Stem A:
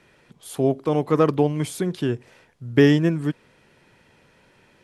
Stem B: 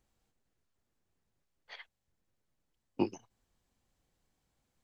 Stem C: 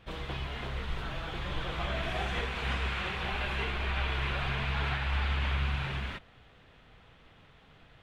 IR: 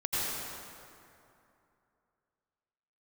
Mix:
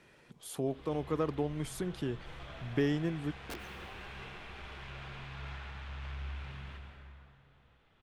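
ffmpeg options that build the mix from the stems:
-filter_complex "[0:a]volume=-4.5dB[a];[1:a]aeval=exprs='(mod(21.1*val(0)+1,2)-1)/21.1':c=same,adelay=500,volume=-11dB,asplit=2[b][c];[c]volume=-15dB[d];[2:a]asoftclip=type=tanh:threshold=-28dB,adelay=600,volume=-16dB,asplit=2[e][f];[f]volume=-7dB[g];[a][e]amix=inputs=2:normalize=0,acompressor=threshold=-46dB:ratio=1.5,volume=0dB[h];[3:a]atrim=start_sample=2205[i];[d][g]amix=inputs=2:normalize=0[j];[j][i]afir=irnorm=-1:irlink=0[k];[b][h][k]amix=inputs=3:normalize=0"

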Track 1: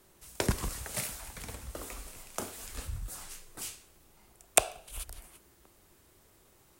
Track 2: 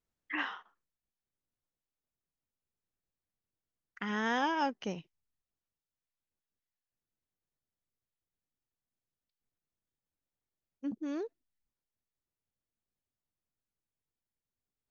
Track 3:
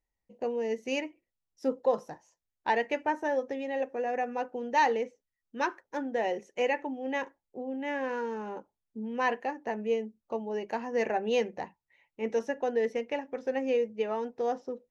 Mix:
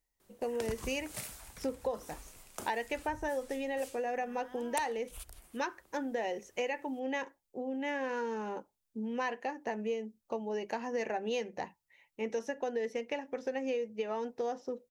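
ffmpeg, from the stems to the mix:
-filter_complex "[0:a]adelay=200,volume=-6.5dB[a];[1:a]adelay=150,volume=-17.5dB[b];[2:a]highshelf=f=3.9k:g=8.5,volume=0dB,asplit=2[c][d];[d]apad=whole_len=663844[e];[b][e]sidechaincompress=threshold=-31dB:ratio=8:attack=16:release=816[f];[a][f][c]amix=inputs=3:normalize=0,acompressor=threshold=-32dB:ratio=4"

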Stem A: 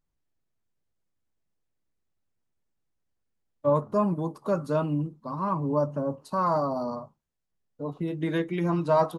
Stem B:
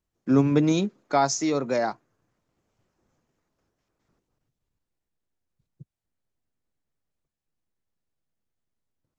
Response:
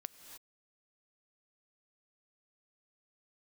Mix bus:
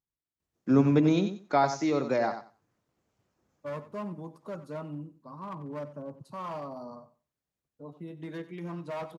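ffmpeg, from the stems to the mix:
-filter_complex "[0:a]volume=21dB,asoftclip=hard,volume=-21dB,volume=-11.5dB,asplit=2[a][b];[b]volume=-15.5dB[c];[1:a]adelay=400,volume=-2.5dB,asplit=2[d][e];[e]volume=-10dB[f];[c][f]amix=inputs=2:normalize=0,aecho=0:1:92|184|276:1|0.17|0.0289[g];[a][d][g]amix=inputs=3:normalize=0,acrossover=split=4300[h][i];[i]acompressor=threshold=-56dB:ratio=4:attack=1:release=60[j];[h][j]amix=inputs=2:normalize=0,highpass=55"

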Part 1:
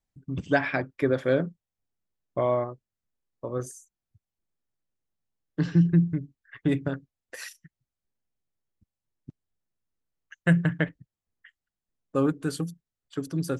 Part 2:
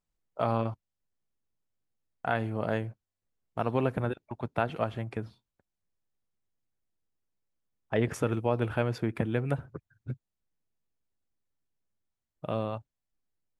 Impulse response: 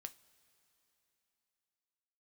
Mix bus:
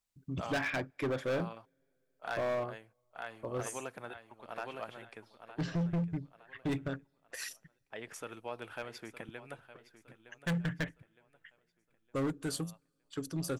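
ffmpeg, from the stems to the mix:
-filter_complex "[0:a]asubboost=boost=3:cutoff=74,volume=-11dB,asplit=3[a][b][c];[b]volume=-15.5dB[d];[1:a]highpass=f=810:p=1,volume=-1.5dB,afade=t=out:st=3.83:d=0.63:silence=0.266073,asplit=2[e][f];[f]volume=-15dB[g];[c]apad=whole_len=599744[h];[e][h]sidechaincompress=threshold=-50dB:ratio=8:attack=16:release=1230[i];[2:a]atrim=start_sample=2205[j];[d][j]afir=irnorm=-1:irlink=0[k];[g]aecho=0:1:913|1826|2739|3652|4565:1|0.37|0.137|0.0507|0.0187[l];[a][i][k][l]amix=inputs=4:normalize=0,highshelf=f=2.2k:g=6,dynaudnorm=f=150:g=3:m=4.5dB,asoftclip=type=hard:threshold=-29dB"

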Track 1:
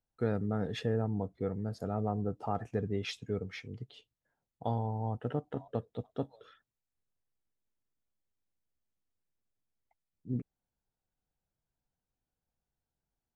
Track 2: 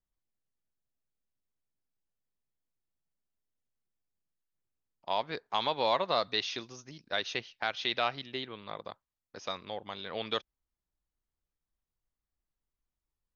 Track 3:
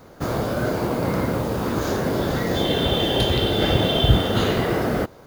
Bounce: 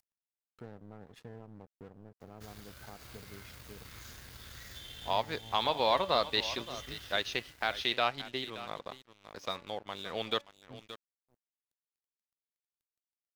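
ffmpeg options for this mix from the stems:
-filter_complex "[0:a]adelay=400,volume=-15.5dB,asplit=2[a][b];[b]volume=-23dB[c];[1:a]bandreject=f=286.1:t=h:w=4,bandreject=f=572.2:t=h:w=4,bandreject=f=858.3:t=h:w=4,bandreject=f=1.1444k:t=h:w=4,bandreject=f=1.4305k:t=h:w=4,bandreject=f=1.7166k:t=h:w=4,bandreject=f=2.0027k:t=h:w=4,bandreject=f=2.2888k:t=h:w=4,bandreject=f=2.5749k:t=h:w=4,volume=1dB,asplit=3[d][e][f];[e]volume=-14dB[g];[2:a]acrossover=split=88|1700[h][i][j];[h]acompressor=threshold=-37dB:ratio=4[k];[i]acompressor=threshold=-53dB:ratio=4[l];[j]acompressor=threshold=-30dB:ratio=4[m];[k][l][m]amix=inputs=3:normalize=0,adelay=2200,volume=-14dB,asplit=2[n][o];[o]volume=-3.5dB[p];[f]apad=whole_len=329153[q];[n][q]sidechaincompress=threshold=-39dB:ratio=8:attack=5.4:release=330[r];[c][g][p]amix=inputs=3:normalize=0,aecho=0:1:575:1[s];[a][d][r][s]amix=inputs=4:normalize=0,acompressor=mode=upward:threshold=-41dB:ratio=2.5,aeval=exprs='sgn(val(0))*max(abs(val(0))-0.00237,0)':c=same"

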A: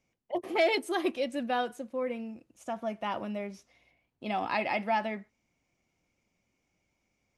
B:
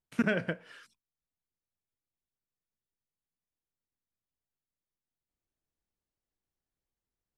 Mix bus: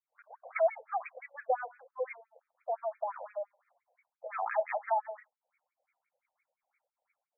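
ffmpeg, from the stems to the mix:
-filter_complex "[0:a]dynaudnorm=f=160:g=5:m=7.5dB,volume=0.5dB[a];[1:a]equalizer=f=1.1k:t=o:w=0.24:g=10.5,acompressor=threshold=-31dB:ratio=6,volume=-13dB[b];[a][b]amix=inputs=2:normalize=0,acrossover=split=760[c][d];[c]aeval=exprs='val(0)*(1-1/2+1/2*cos(2*PI*2.6*n/s))':c=same[e];[d]aeval=exprs='val(0)*(1-1/2-1/2*cos(2*PI*2.6*n/s))':c=same[f];[e][f]amix=inputs=2:normalize=0,afftfilt=real='re*between(b*sr/1024,630*pow(1800/630,0.5+0.5*sin(2*PI*5.8*pts/sr))/1.41,630*pow(1800/630,0.5+0.5*sin(2*PI*5.8*pts/sr))*1.41)':imag='im*between(b*sr/1024,630*pow(1800/630,0.5+0.5*sin(2*PI*5.8*pts/sr))/1.41,630*pow(1800/630,0.5+0.5*sin(2*PI*5.8*pts/sr))*1.41)':win_size=1024:overlap=0.75"

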